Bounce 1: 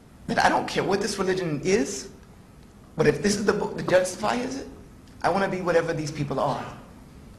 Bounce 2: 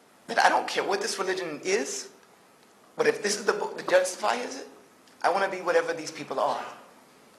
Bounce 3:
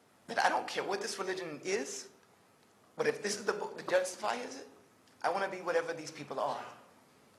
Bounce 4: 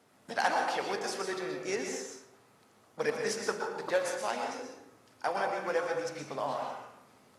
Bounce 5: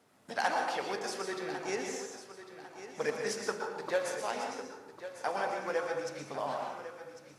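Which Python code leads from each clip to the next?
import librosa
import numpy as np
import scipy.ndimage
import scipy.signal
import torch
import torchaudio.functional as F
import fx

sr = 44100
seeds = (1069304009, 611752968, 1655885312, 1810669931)

y1 = scipy.signal.sosfilt(scipy.signal.butter(2, 450.0, 'highpass', fs=sr, output='sos'), x)
y2 = fx.peak_eq(y1, sr, hz=100.0, db=12.0, octaves=0.93)
y2 = y2 * librosa.db_to_amplitude(-8.5)
y3 = fx.rev_plate(y2, sr, seeds[0], rt60_s=0.72, hf_ratio=0.6, predelay_ms=105, drr_db=3.0)
y4 = fx.echo_feedback(y3, sr, ms=1100, feedback_pct=34, wet_db=-12.5)
y4 = y4 * librosa.db_to_amplitude(-2.0)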